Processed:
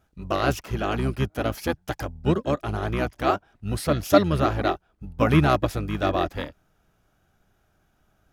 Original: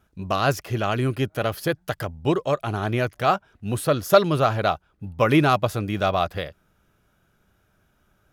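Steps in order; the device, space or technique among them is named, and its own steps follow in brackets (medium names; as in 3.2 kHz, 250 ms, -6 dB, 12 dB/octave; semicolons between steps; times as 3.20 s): octave pedal (harmony voices -12 st -2 dB); trim -3.5 dB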